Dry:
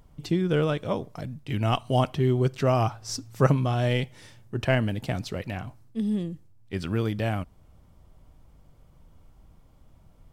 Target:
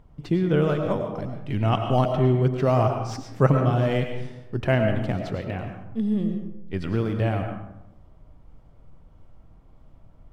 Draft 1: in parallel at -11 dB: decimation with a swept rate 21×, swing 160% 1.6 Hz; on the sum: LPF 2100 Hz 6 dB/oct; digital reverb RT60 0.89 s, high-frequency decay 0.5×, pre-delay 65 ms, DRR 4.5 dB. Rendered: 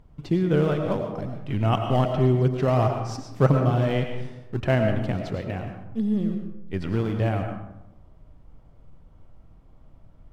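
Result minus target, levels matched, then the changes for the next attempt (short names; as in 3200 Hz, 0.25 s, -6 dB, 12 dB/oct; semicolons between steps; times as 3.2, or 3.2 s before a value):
decimation with a swept rate: distortion +10 dB
change: decimation with a swept rate 5×, swing 160% 1.6 Hz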